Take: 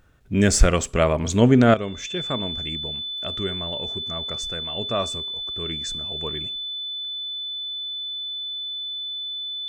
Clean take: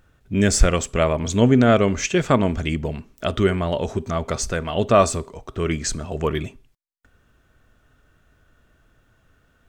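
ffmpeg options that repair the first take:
ffmpeg -i in.wav -af "bandreject=frequency=3500:width=30,asetnsamples=nb_out_samples=441:pad=0,asendcmd='1.74 volume volume 10.5dB',volume=0dB" out.wav

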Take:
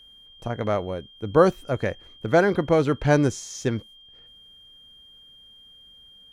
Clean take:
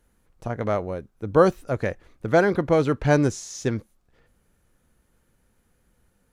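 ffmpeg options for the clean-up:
ffmpeg -i in.wav -af "bandreject=frequency=3200:width=30" out.wav

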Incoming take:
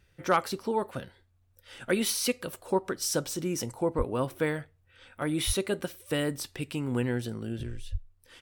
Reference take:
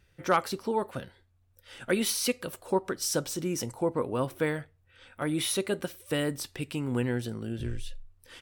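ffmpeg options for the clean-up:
ffmpeg -i in.wav -filter_complex "[0:a]asplit=3[link_01][link_02][link_03];[link_01]afade=type=out:start_time=3.97:duration=0.02[link_04];[link_02]highpass=frequency=140:width=0.5412,highpass=frequency=140:width=1.3066,afade=type=in:start_time=3.97:duration=0.02,afade=type=out:start_time=4.09:duration=0.02[link_05];[link_03]afade=type=in:start_time=4.09:duration=0.02[link_06];[link_04][link_05][link_06]amix=inputs=3:normalize=0,asplit=3[link_07][link_08][link_09];[link_07]afade=type=out:start_time=5.46:duration=0.02[link_10];[link_08]highpass=frequency=140:width=0.5412,highpass=frequency=140:width=1.3066,afade=type=in:start_time=5.46:duration=0.02,afade=type=out:start_time=5.58:duration=0.02[link_11];[link_09]afade=type=in:start_time=5.58:duration=0.02[link_12];[link_10][link_11][link_12]amix=inputs=3:normalize=0,asplit=3[link_13][link_14][link_15];[link_13]afade=type=out:start_time=7.91:duration=0.02[link_16];[link_14]highpass=frequency=140:width=0.5412,highpass=frequency=140:width=1.3066,afade=type=in:start_time=7.91:duration=0.02,afade=type=out:start_time=8.03:duration=0.02[link_17];[link_15]afade=type=in:start_time=8.03:duration=0.02[link_18];[link_16][link_17][link_18]amix=inputs=3:normalize=0,asetnsamples=nb_out_samples=441:pad=0,asendcmd='7.63 volume volume 4dB',volume=0dB" out.wav

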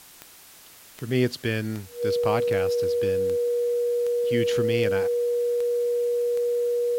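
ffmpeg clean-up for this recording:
ffmpeg -i in.wav -af "adeclick=threshold=4,bandreject=frequency=480:width=30,afwtdn=0.004" out.wav

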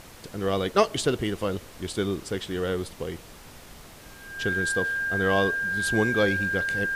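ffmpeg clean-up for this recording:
ffmpeg -i in.wav -af "bandreject=frequency=1600:width=30,afftdn=noise_reduction=25:noise_floor=-46" out.wav

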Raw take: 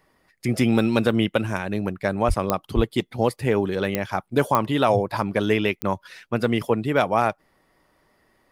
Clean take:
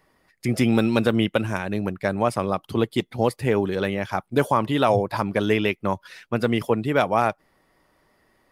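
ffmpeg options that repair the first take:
ffmpeg -i in.wav -filter_complex "[0:a]adeclick=threshold=4,asplit=3[link_01][link_02][link_03];[link_01]afade=type=out:start_time=2.27:duration=0.02[link_04];[link_02]highpass=frequency=140:width=0.5412,highpass=frequency=140:width=1.3066,afade=type=in:start_time=2.27:duration=0.02,afade=type=out:start_time=2.39:duration=0.02[link_05];[link_03]afade=type=in:start_time=2.39:duration=0.02[link_06];[link_04][link_05][link_06]amix=inputs=3:normalize=0,asplit=3[link_07][link_08][link_09];[link_07]afade=type=out:start_time=2.75:duration=0.02[link_10];[link_08]highpass=frequency=140:width=0.5412,highpass=frequency=140:width=1.3066,afade=type=in:start_time=2.75:duration=0.02,afade=type=out:start_time=2.87:duration=0.02[link_11];[link_09]afade=type=in:start_time=2.87:duration=0.02[link_12];[link_10][link_11][link_12]amix=inputs=3:normalize=0" out.wav

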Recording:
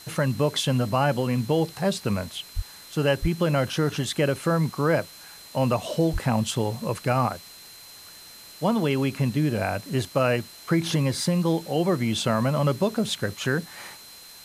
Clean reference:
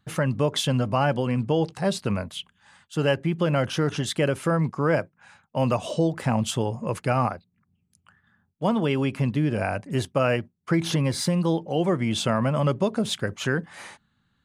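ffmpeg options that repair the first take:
ffmpeg -i in.wav -filter_complex "[0:a]bandreject=frequency=4100:width=30,asplit=3[link_01][link_02][link_03];[link_01]afade=type=out:start_time=2.55:duration=0.02[link_04];[link_02]highpass=frequency=140:width=0.5412,highpass=frequency=140:width=1.3066,afade=type=in:start_time=2.55:duration=0.02,afade=type=out:start_time=2.67:duration=0.02[link_05];[link_03]afade=type=in:start_time=2.67:duration=0.02[link_06];[link_04][link_05][link_06]amix=inputs=3:normalize=0,asplit=3[link_07][link_08][link_09];[link_07]afade=type=out:start_time=3.21:duration=0.02[link_10];[link_08]highpass=frequency=140:width=0.5412,highpass=frequency=140:width=1.3066,afade=type=in:start_time=3.21:duration=0.02,afade=type=out:start_time=3.33:duration=0.02[link_11];[link_09]afade=type=in:start_time=3.33:duration=0.02[link_12];[link_10][link_11][link_12]amix=inputs=3:normalize=0,asplit=3[link_13][link_14][link_15];[link_13]afade=type=out:start_time=6.12:duration=0.02[link_16];[link_14]highpass=frequency=140:width=0.5412,highpass=frequency=140:width=1.3066,afade=type=in:start_time=6.12:duration=0.02,afade=type=out:start_time=6.24:duration=0.02[link_17];[link_15]afade=type=in:start_time=6.24:duration=0.02[link_18];[link_16][link_17][link_18]amix=inputs=3:normalize=0,afftdn=noise_reduction=22:noise_floor=-46" out.wav

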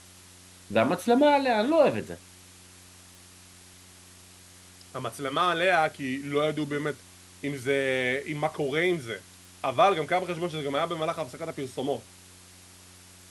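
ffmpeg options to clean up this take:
ffmpeg -i in.wav -af "adeclick=threshold=4,bandreject=frequency=91.1:width_type=h:width=4,bandreject=frequency=182.2:width_type=h:width=4,bandreject=frequency=273.3:width_type=h:width=4,bandreject=frequency=364.4:width_type=h:width=4,afwtdn=0.0032" out.wav

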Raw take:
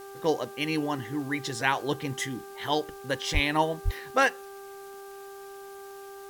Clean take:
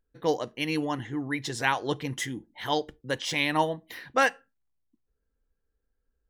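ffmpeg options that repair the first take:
ffmpeg -i in.wav -filter_complex "[0:a]adeclick=threshold=4,bandreject=frequency=394.9:width_type=h:width=4,bandreject=frequency=789.8:width_type=h:width=4,bandreject=frequency=1184.7:width_type=h:width=4,bandreject=frequency=1579.6:width_type=h:width=4,asplit=3[link_01][link_02][link_03];[link_01]afade=type=out:start_time=3.33:duration=0.02[link_04];[link_02]highpass=frequency=140:width=0.5412,highpass=frequency=140:width=1.3066,afade=type=in:start_time=3.33:duration=0.02,afade=type=out:start_time=3.45:duration=0.02[link_05];[link_03]afade=type=in:start_time=3.45:duration=0.02[link_06];[link_04][link_05][link_06]amix=inputs=3:normalize=0,asplit=3[link_07][link_08][link_09];[link_07]afade=type=out:start_time=3.84:duration=0.02[link_10];[link_08]highpass=frequency=140:width=0.5412,highpass=frequency=140:width=1.3066,afade=type=in:start_time=3.84:duration=0.02,afade=type=out:start_time=3.96:duration=0.02[link_11];[link_09]afade=type=in:start_time=3.96:duration=0.02[link_12];[link_10][link_11][link_12]amix=inputs=3:normalize=0,afwtdn=0.002" out.wav

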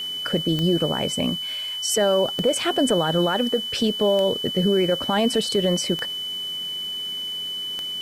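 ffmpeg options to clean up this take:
ffmpeg -i in.wav -af "adeclick=threshold=4,bandreject=frequency=3000:width=30,afwtdn=0.005" out.wav

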